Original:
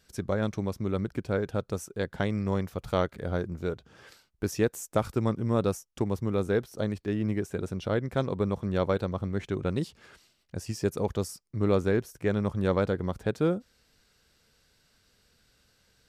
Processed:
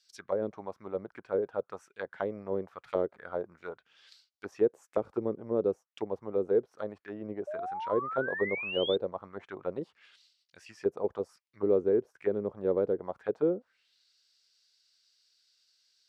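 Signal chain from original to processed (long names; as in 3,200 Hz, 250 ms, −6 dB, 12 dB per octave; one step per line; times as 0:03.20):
envelope filter 420–4,900 Hz, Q 2.5, down, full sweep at −23 dBFS
sound drawn into the spectrogram rise, 0:07.47–0:08.96, 580–3,700 Hz −39 dBFS
level +2.5 dB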